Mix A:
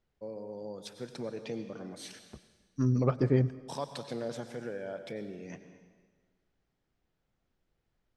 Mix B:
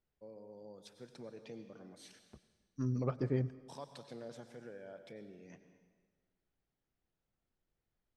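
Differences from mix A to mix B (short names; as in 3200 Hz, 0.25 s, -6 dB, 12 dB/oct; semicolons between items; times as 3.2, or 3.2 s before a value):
first voice -11.0 dB; second voice -8.0 dB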